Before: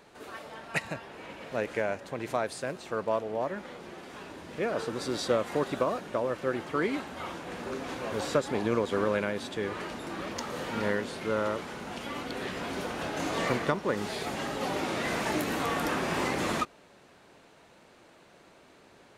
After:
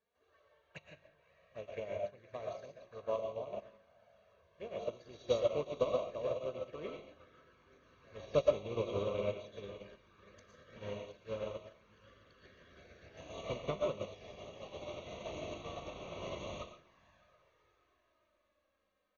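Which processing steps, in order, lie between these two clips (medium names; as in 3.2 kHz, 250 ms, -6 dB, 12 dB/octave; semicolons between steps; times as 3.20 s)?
rattle on loud lows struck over -39 dBFS, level -32 dBFS; brick-wall FIR low-pass 6.7 kHz; bass shelf 120 Hz -6.5 dB; feedback comb 50 Hz, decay 0.54 s, harmonics all, mix 60%; echo that smears into a reverb 568 ms, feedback 52%, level -10 dB; touch-sensitive flanger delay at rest 4.9 ms, full sweep at -34.5 dBFS; peaking EQ 76 Hz +14 dB 0.83 oct; band-stop 5.2 kHz, Q 5.5; comb 1.8 ms, depth 49%; reverberation RT60 0.40 s, pre-delay 75 ms, DRR 1 dB; upward expansion 2.5:1, over -42 dBFS; trim +2.5 dB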